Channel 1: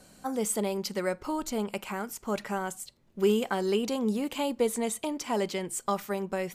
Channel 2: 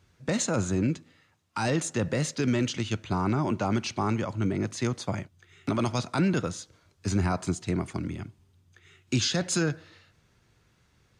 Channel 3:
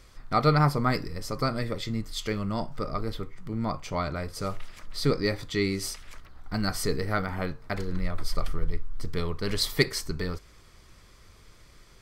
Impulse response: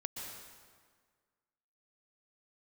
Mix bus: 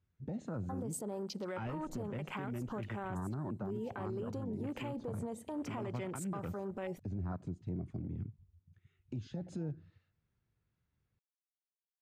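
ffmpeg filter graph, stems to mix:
-filter_complex "[0:a]agate=range=-33dB:threshold=-49dB:ratio=3:detection=peak,acompressor=threshold=-34dB:ratio=4,adelay=450,volume=2.5dB,asplit=2[a][b];[b]volume=-18.5dB[c];[1:a]bass=f=250:g=7,treble=f=4k:g=-10,volume=-5.5dB,acompressor=threshold=-33dB:ratio=2.5,volume=0dB[d];[3:a]atrim=start_sample=2205[e];[c][e]afir=irnorm=-1:irlink=0[f];[a][d][f]amix=inputs=3:normalize=0,afwtdn=0.00891,alimiter=level_in=8dB:limit=-24dB:level=0:latency=1:release=109,volume=-8dB"

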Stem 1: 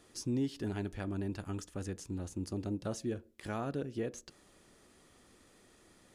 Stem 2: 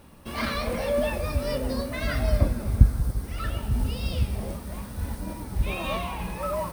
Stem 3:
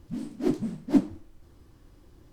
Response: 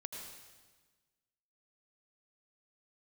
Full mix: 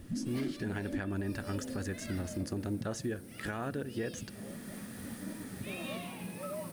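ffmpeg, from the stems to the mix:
-filter_complex "[0:a]equalizer=f=1.7k:w=2.7:g=9.5,dynaudnorm=f=240:g=5:m=11dB,volume=-3dB[a];[1:a]highpass=f=140:w=0.5412,highpass=f=140:w=1.3066,volume=-8dB[b];[2:a]volume=-1dB[c];[b][c]amix=inputs=2:normalize=0,equalizer=f=100:t=o:w=0.67:g=6,equalizer=f=250:t=o:w=0.67:g=6,equalizer=f=1k:t=o:w=0.67:g=-11,equalizer=f=10k:t=o:w=0.67:g=6,acompressor=threshold=-35dB:ratio=2.5,volume=0dB[d];[a][d]amix=inputs=2:normalize=0,alimiter=level_in=2.5dB:limit=-24dB:level=0:latency=1:release=424,volume=-2.5dB"

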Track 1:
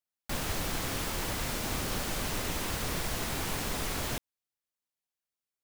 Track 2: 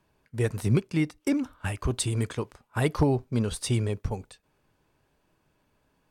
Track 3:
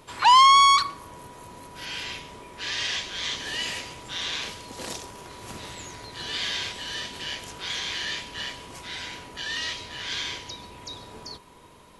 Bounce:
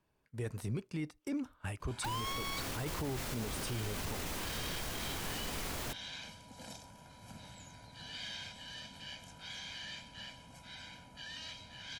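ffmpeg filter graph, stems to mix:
-filter_complex "[0:a]adelay=1750,volume=-5.5dB[a];[1:a]volume=-9dB[b];[2:a]equalizer=f=200:t=o:w=1.9:g=7.5,aecho=1:1:1.3:0.83,asoftclip=type=tanh:threshold=-13.5dB,adelay=1800,volume=-17dB[c];[a][b][c]amix=inputs=3:normalize=0,alimiter=level_in=5.5dB:limit=-24dB:level=0:latency=1:release=13,volume=-5.5dB"

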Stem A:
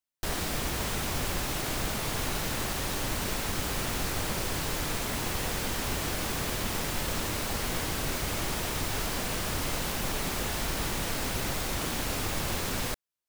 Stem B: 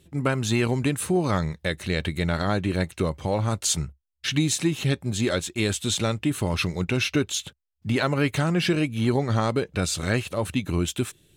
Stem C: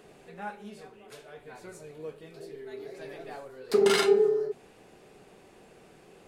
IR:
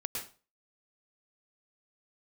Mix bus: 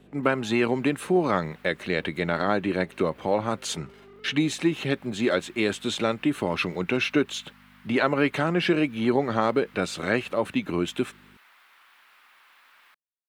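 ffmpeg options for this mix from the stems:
-filter_complex "[0:a]highpass=f=1.1k:w=0.5412,highpass=f=1.1k:w=1.3066,equalizer=f=6.7k:w=1.1:g=-8.5,volume=-9dB[a];[1:a]aeval=exprs='val(0)+0.00562*(sin(2*PI*50*n/s)+sin(2*PI*2*50*n/s)/2+sin(2*PI*3*50*n/s)/3+sin(2*PI*4*50*n/s)/4+sin(2*PI*5*50*n/s)/5)':c=same,volume=2.5dB,asplit=2[b][c];[2:a]volume=-5dB[d];[c]apad=whole_len=585701[e];[a][e]sidechaincompress=threshold=-28dB:ratio=8:attack=16:release=126[f];[f][d]amix=inputs=2:normalize=0,aeval=exprs='(tanh(100*val(0)+0.45)-tanh(0.45))/100':c=same,acompressor=threshold=-51dB:ratio=3,volume=0dB[g];[b][g]amix=inputs=2:normalize=0,acrossover=split=190 3300:gain=0.0891 1 0.2[h][i][j];[h][i][j]amix=inputs=3:normalize=0"

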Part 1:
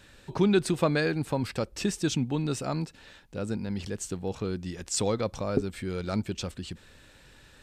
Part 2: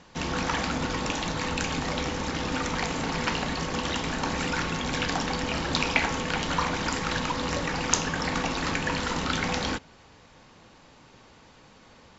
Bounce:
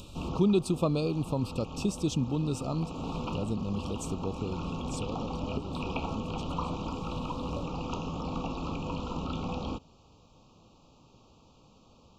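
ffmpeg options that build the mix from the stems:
-filter_complex "[0:a]acompressor=mode=upward:threshold=-35dB:ratio=2.5,volume=-5.5dB,afade=t=out:st=4.21:d=0.63:silence=0.354813,asplit=2[a][b];[1:a]acrossover=split=3100[c][d];[d]acompressor=threshold=-49dB:ratio=4:attack=1:release=60[e];[c][e]amix=inputs=2:normalize=0,volume=-8dB[f];[b]apad=whole_len=537448[g];[f][g]sidechaincompress=threshold=-35dB:ratio=8:attack=5:release=561[h];[a][h]amix=inputs=2:normalize=0,asuperstop=centerf=1800:order=12:qfactor=1.6,lowshelf=f=340:g=6.5"

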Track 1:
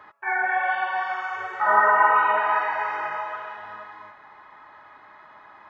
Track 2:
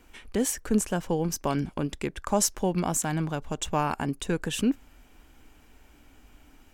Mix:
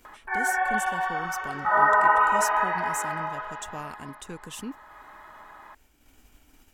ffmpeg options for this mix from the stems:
-filter_complex "[0:a]equalizer=f=2.3k:t=o:w=0.31:g=-4,adelay=50,volume=-1.5dB[a];[1:a]highshelf=f=4.3k:g=8.5,asoftclip=type=tanh:threshold=-8dB,volume=-12dB[b];[a][b]amix=inputs=2:normalize=0,agate=range=-33dB:threshold=-58dB:ratio=3:detection=peak,acompressor=mode=upward:threshold=-41dB:ratio=2.5"

